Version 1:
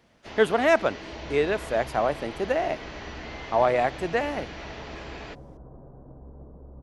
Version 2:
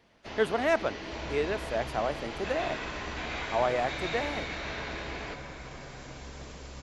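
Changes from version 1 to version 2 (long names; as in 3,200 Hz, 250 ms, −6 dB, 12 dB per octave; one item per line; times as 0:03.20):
speech −6.0 dB
second sound: remove Gaussian smoothing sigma 11 samples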